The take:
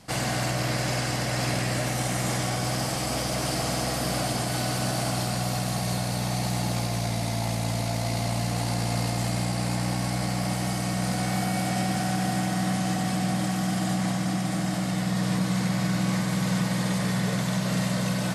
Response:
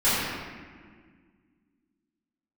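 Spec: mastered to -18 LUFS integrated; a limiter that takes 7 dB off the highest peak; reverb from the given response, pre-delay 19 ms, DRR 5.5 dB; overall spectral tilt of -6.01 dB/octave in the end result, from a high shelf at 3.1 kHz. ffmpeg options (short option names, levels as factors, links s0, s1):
-filter_complex "[0:a]highshelf=f=3100:g=-8.5,alimiter=limit=0.075:level=0:latency=1,asplit=2[s0][s1];[1:a]atrim=start_sample=2205,adelay=19[s2];[s1][s2]afir=irnorm=-1:irlink=0,volume=0.0708[s3];[s0][s3]amix=inputs=2:normalize=0,volume=3.98"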